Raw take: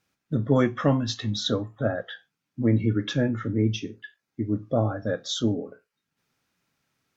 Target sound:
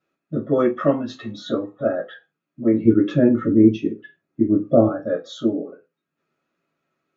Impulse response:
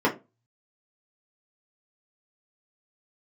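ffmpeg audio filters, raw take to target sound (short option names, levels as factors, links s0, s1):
-filter_complex "[0:a]asettb=1/sr,asplit=3[s0][s1][s2];[s0]atrim=end=2.854[s3];[s1]atrim=start=2.85:end=4.89,asetpts=PTS-STARTPTS,afade=t=in:d=0.004:c=qsin,afade=t=out:st=2.036:d=0.004:c=qsin,lowshelf=f=420:g=11[s4];[s2]atrim=start=4.886[s5];[s3][s4]acrossfade=d=0.004:c1=hsin:c2=qsin[s6];[s6][s5]acrossfade=d=0.004:c1=qsin:c2=hsin[s7];[1:a]atrim=start_sample=2205,asetrate=57330,aresample=44100[s8];[s7][s8]afir=irnorm=-1:irlink=0,volume=0.211"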